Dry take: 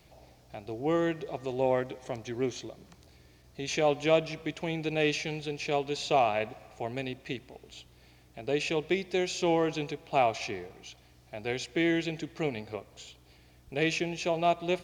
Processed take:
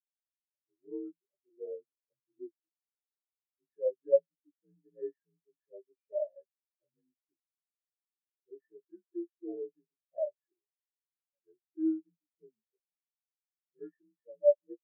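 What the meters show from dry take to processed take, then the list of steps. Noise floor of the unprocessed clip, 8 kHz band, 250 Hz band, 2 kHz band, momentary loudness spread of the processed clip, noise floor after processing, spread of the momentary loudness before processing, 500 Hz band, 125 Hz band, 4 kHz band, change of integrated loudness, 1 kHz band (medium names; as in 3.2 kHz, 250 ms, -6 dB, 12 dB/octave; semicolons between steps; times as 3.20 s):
-59 dBFS, under -35 dB, -9.0 dB, under -40 dB, 22 LU, under -85 dBFS, 18 LU, -5.0 dB, under -35 dB, under -40 dB, -4.0 dB, under -30 dB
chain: frequency axis rescaled in octaves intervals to 84%; spectral contrast expander 4:1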